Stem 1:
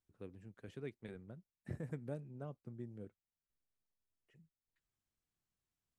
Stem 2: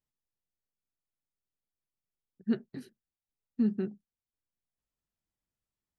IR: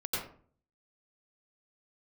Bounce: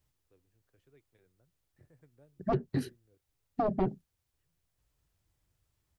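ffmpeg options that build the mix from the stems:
-filter_complex "[0:a]adelay=100,volume=-17dB[a];[1:a]equalizer=f=82:t=o:w=2.6:g=11.5,aeval=exprs='0.2*sin(PI/2*3.16*val(0)/0.2)':c=same,volume=-3.5dB[b];[a][b]amix=inputs=2:normalize=0,acrossover=split=470[c][d];[d]acompressor=threshold=-32dB:ratio=6[e];[c][e]amix=inputs=2:normalize=0,equalizer=f=210:t=o:w=0.36:g=-14.5"

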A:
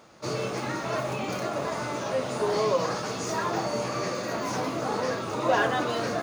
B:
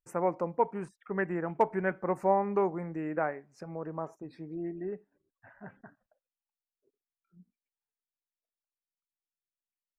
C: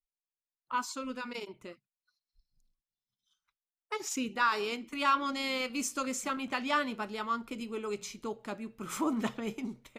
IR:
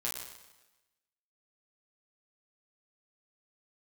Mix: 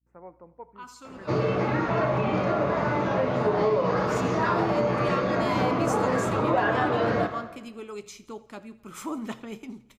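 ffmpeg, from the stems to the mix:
-filter_complex "[0:a]lowpass=2.2k,lowshelf=f=100:g=10.5,adelay=1050,volume=2.5dB,asplit=2[a][b];[b]volume=-4dB[c];[1:a]lowpass=2.4k,aeval=exprs='val(0)+0.00282*(sin(2*PI*60*n/s)+sin(2*PI*2*60*n/s)/2+sin(2*PI*3*60*n/s)/3+sin(2*PI*4*60*n/s)/4+sin(2*PI*5*60*n/s)/5)':c=same,agate=range=-33dB:threshold=-47dB:ratio=3:detection=peak,volume=-17.5dB,asplit=4[d][e][f][g];[e]volume=-19dB[h];[f]volume=-19dB[i];[2:a]adelay=50,volume=-2dB,asplit=2[j][k];[k]volume=-19.5dB[l];[g]apad=whole_len=442395[m];[j][m]sidechaincompress=threshold=-53dB:ratio=3:attack=12:release=710[n];[3:a]atrim=start_sample=2205[o];[c][h]amix=inputs=2:normalize=0[p];[p][o]afir=irnorm=-1:irlink=0[q];[i][l]amix=inputs=2:normalize=0,aecho=0:1:84|168|252|336|420|504|588|672:1|0.53|0.281|0.149|0.0789|0.0418|0.0222|0.0117[r];[a][d][n][q][r]amix=inputs=5:normalize=0,acompressor=threshold=-20dB:ratio=5"

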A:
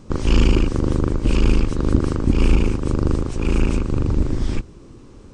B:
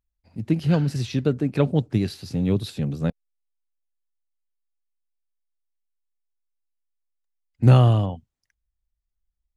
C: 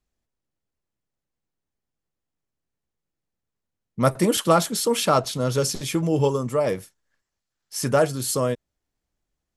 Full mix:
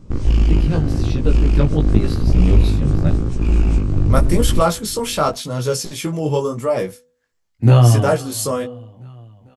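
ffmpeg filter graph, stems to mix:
-filter_complex "[0:a]asoftclip=type=hard:threshold=-13dB,lowshelf=f=250:g=11.5,volume=-3.5dB[a];[1:a]volume=2.5dB,asplit=2[b][c];[c]volume=-20.5dB[d];[2:a]adelay=100,volume=2dB[e];[d]aecho=0:1:446|892|1338|1784|2230|2676|3122|3568|4014:1|0.57|0.325|0.185|0.106|0.0602|0.0343|0.0195|0.0111[f];[a][b][e][f]amix=inputs=4:normalize=0,flanger=delay=16.5:depth=3.7:speed=0.88,dynaudnorm=f=280:g=11:m=8dB,bandreject=f=246.2:t=h:w=4,bandreject=f=492.4:t=h:w=4"

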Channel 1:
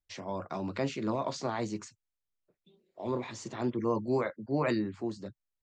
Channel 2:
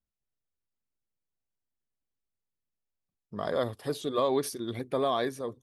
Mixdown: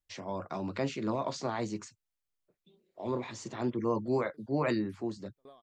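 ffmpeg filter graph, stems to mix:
-filter_complex "[0:a]volume=-0.5dB,asplit=2[a][b];[1:a]aeval=exprs='val(0)*pow(10,-31*if(lt(mod(3.6*n/s,1),2*abs(3.6)/1000),1-mod(3.6*n/s,1)/(2*abs(3.6)/1000),(mod(3.6*n/s,1)-2*abs(3.6)/1000)/(1-2*abs(3.6)/1000))/20)':c=same,adelay=450,volume=-15.5dB[c];[b]apad=whole_len=267773[d];[c][d]sidechaincompress=threshold=-51dB:ratio=5:attack=16:release=362[e];[a][e]amix=inputs=2:normalize=0"

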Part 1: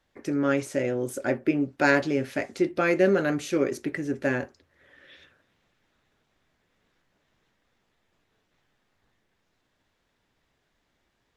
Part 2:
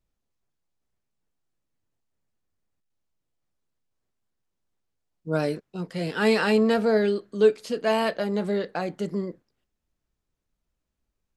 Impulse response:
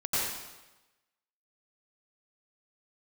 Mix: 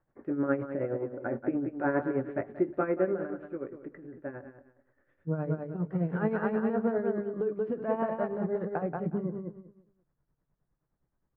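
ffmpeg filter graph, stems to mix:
-filter_complex "[0:a]deesser=0.9,volume=-1.5dB,afade=t=out:st=2.69:d=0.71:silence=0.334965,asplit=2[a][b];[b]volume=-10dB[c];[1:a]equalizer=f=140:w=2.7:g=12.5,acompressor=threshold=-27dB:ratio=3,volume=1dB,asplit=2[d][e];[e]volume=-4dB[f];[c][f]amix=inputs=2:normalize=0,aecho=0:1:181|362|543|724:1|0.26|0.0676|0.0176[g];[a][d][g]amix=inputs=3:normalize=0,lowpass=f=1.5k:w=0.5412,lowpass=f=1.5k:w=1.3066,bandreject=f=50:t=h:w=6,bandreject=f=100:t=h:w=6,bandreject=f=150:t=h:w=6,bandreject=f=200:t=h:w=6,bandreject=f=250:t=h:w=6,tremolo=f=9.6:d=0.65"

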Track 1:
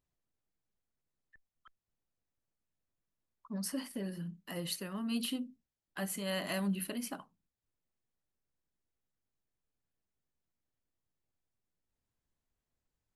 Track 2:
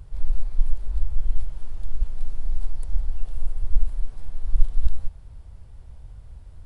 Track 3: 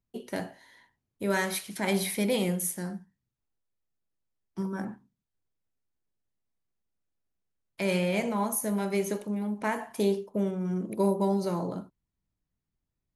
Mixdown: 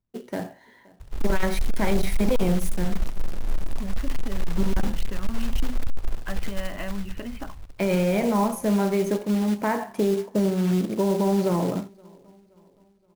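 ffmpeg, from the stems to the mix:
-filter_complex "[0:a]lowpass=f=2.7k:w=0.5412,lowpass=f=2.7k:w=1.3066,acompressor=threshold=-39dB:ratio=4,adelay=300,volume=2dB[a];[1:a]adelay=1000,volume=-1.5dB,asplit=2[b][c];[c]volume=-9dB[d];[2:a]equalizer=f=4.9k:t=o:w=2.6:g=-10,volume=3dB,asplit=3[e][f][g];[f]volume=-23.5dB[h];[g]apad=whole_len=593373[i];[a][i]sidechaincompress=threshold=-43dB:ratio=8:attack=16:release=107[j];[j][e]amix=inputs=2:normalize=0,dynaudnorm=f=110:g=11:m=5.5dB,alimiter=limit=-14dB:level=0:latency=1:release=19,volume=0dB[k];[d][h]amix=inputs=2:normalize=0,aecho=0:1:523|1046|1569|2092|2615|3138:1|0.46|0.212|0.0973|0.0448|0.0206[l];[b][k][l]amix=inputs=3:normalize=0,lowpass=6.5k,acrusher=bits=4:mode=log:mix=0:aa=0.000001,volume=15dB,asoftclip=hard,volume=-15dB"

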